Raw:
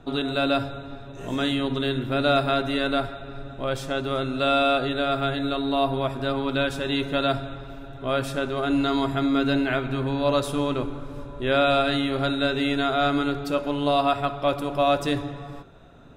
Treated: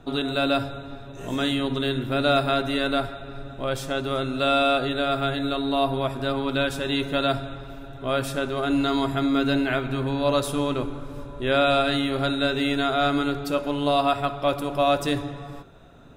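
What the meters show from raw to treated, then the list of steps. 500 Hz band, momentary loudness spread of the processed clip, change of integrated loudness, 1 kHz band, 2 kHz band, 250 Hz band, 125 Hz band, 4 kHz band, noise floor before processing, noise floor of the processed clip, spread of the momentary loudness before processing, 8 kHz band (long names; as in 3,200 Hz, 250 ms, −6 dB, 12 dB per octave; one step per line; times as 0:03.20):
0.0 dB, 13 LU, 0.0 dB, 0.0 dB, +0.5 dB, 0.0 dB, 0.0 dB, +1.0 dB, −40 dBFS, −40 dBFS, 13 LU, +3.5 dB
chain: high-shelf EQ 8,200 Hz +7 dB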